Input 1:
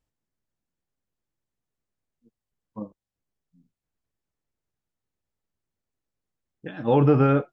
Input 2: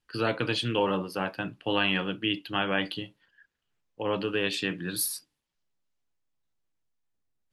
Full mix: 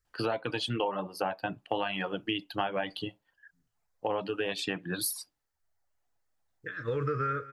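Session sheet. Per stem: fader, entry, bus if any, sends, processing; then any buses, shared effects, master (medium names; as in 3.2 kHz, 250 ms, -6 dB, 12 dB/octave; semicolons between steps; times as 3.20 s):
-0.5 dB, 0.00 s, no send, echo send -24 dB, FFT filter 110 Hz 0 dB, 210 Hz -21 dB, 460 Hz -3 dB, 800 Hz -30 dB, 1.2 kHz +5 dB, 1.9 kHz +6 dB, 2.9 kHz -11 dB, 4.3 kHz +3 dB
+1.0 dB, 0.05 s, no send, no echo send, reverb removal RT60 0.89 s; peaking EQ 740 Hz +12.5 dB 1 oct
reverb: none
echo: delay 192 ms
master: compression 6:1, threshold -28 dBFS, peak gain reduction 13.5 dB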